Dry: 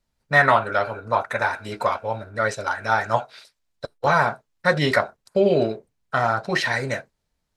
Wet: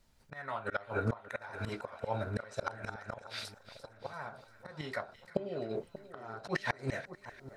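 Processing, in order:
gate with flip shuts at −12 dBFS, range −24 dB
volume swells 398 ms
echo with a time of its own for lows and highs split 1,500 Hz, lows 586 ms, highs 344 ms, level −14 dB
level +7 dB

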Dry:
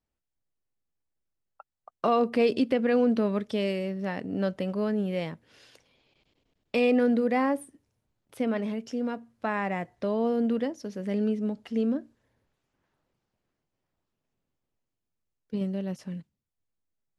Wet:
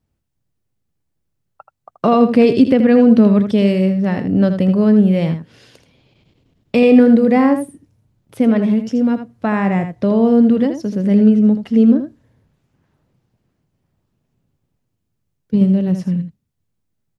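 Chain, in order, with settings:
parametric band 120 Hz +13.5 dB 2.5 octaves
on a send: single-tap delay 80 ms −9 dB
on the sum: level +7 dB

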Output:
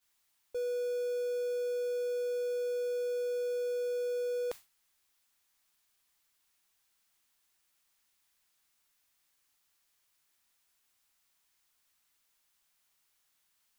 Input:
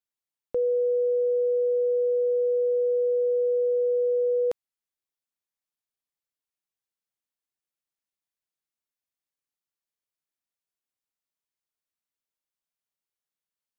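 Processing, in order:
converter with a step at zero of −38.5 dBFS
octave-band graphic EQ 125/250/500 Hz −8/−4/−8 dB
in parallel at −12 dB: centre clipping without the shift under −41.5 dBFS
on the sum: downward expander −33 dBFS
level −3.5 dB

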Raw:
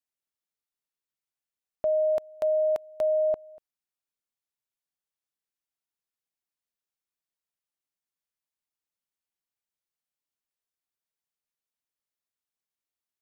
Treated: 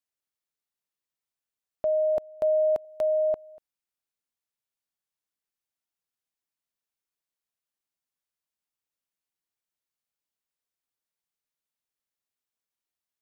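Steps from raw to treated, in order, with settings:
0:02.17–0:02.85: tilt shelving filter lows +6 dB, about 810 Hz

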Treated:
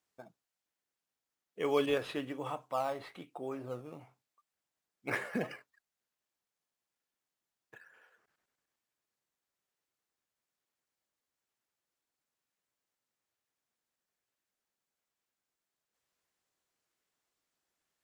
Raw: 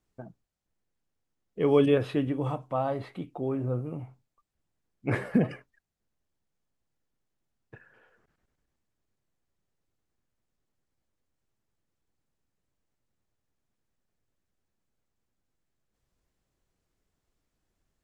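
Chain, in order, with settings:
high-pass filter 1,300 Hz 6 dB per octave
in parallel at −12 dB: sample-and-hold swept by an LFO 10×, swing 100% 1.1 Hz

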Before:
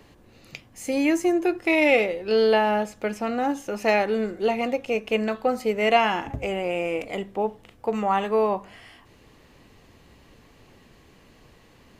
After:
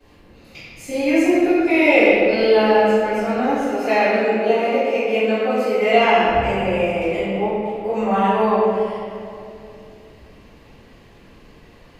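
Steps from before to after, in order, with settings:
0:03.68–0:05.93: high-pass filter 230 Hz 12 dB per octave
tape delay 408 ms, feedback 47%, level −13.5 dB, low-pass 1,100 Hz
convolution reverb RT60 2.2 s, pre-delay 3 ms, DRR −19.5 dB
level −16.5 dB

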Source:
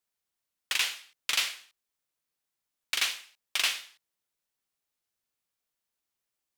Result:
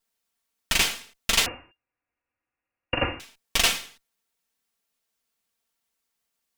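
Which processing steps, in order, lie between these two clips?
lower of the sound and its delayed copy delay 4.4 ms
0:01.46–0:03.20: voice inversion scrambler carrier 2,800 Hz
level +7.5 dB

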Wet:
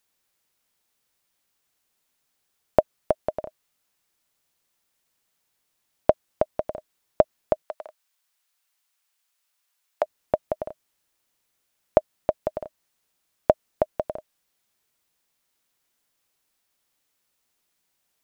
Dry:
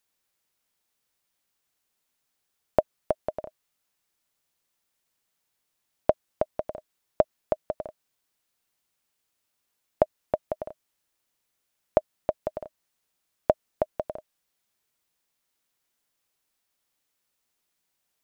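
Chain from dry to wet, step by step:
0:07.62–0:10.03: high-pass filter 890 Hz 12 dB per octave
level +3.5 dB

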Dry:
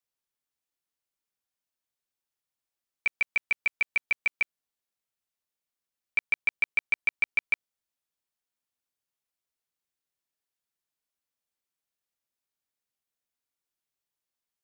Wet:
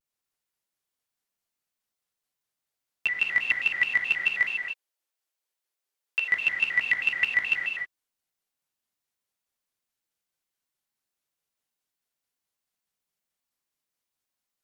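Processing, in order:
0:04.42–0:06.25: Chebyshev high-pass filter 380 Hz, order 3
reverb whose tail is shaped and stops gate 320 ms flat, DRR −0.5 dB
pitch modulation by a square or saw wave square 4.7 Hz, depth 250 cents

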